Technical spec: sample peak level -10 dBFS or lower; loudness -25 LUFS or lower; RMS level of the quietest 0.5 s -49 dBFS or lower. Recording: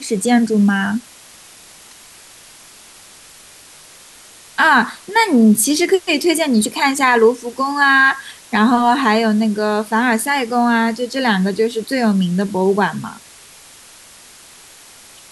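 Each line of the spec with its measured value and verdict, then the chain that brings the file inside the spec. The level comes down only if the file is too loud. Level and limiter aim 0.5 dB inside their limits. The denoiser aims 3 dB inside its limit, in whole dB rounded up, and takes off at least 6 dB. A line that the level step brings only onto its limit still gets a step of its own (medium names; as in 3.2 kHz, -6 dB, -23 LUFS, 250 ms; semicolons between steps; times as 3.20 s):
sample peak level -3.0 dBFS: fail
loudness -15.5 LUFS: fail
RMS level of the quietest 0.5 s -42 dBFS: fail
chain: trim -10 dB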